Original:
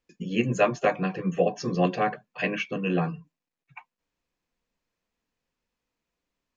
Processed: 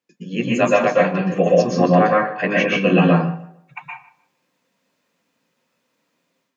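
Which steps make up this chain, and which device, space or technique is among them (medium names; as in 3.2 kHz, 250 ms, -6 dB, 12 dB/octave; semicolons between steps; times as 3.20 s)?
1.77–2.49 s: resonant high shelf 2.2 kHz -7 dB, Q 1.5; tape echo 150 ms, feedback 27%, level -16 dB, low-pass 2.1 kHz; far laptop microphone (reverberation RT60 0.35 s, pre-delay 114 ms, DRR -2.5 dB; high-pass 130 Hz 24 dB/octave; level rider gain up to 10.5 dB)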